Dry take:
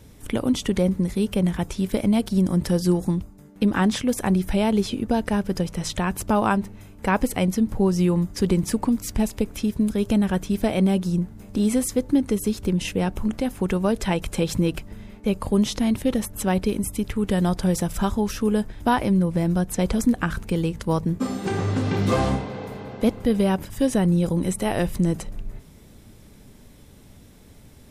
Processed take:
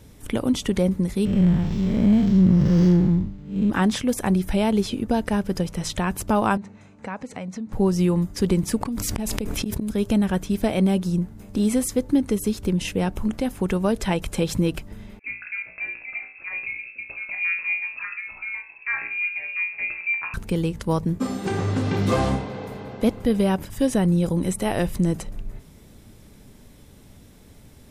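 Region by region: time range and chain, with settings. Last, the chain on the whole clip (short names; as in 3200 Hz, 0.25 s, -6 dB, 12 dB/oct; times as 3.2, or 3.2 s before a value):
1.25–3.7 time blur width 0.176 s + tone controls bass +10 dB, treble +4 dB + decimation joined by straight lines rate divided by 4×
6.57–7.73 compressor 4:1, threshold -28 dBFS + speaker cabinet 140–6800 Hz, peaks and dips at 350 Hz -9 dB, 3200 Hz -7 dB, 5100 Hz -7 dB
8.81–9.89 flipped gate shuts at -15 dBFS, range -27 dB + fast leveller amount 100%
15.19–20.34 inverted band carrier 2600 Hz + pump 139 bpm, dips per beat 1, -12 dB, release 86 ms + resonator 59 Hz, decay 0.48 s, mix 90%
whole clip: dry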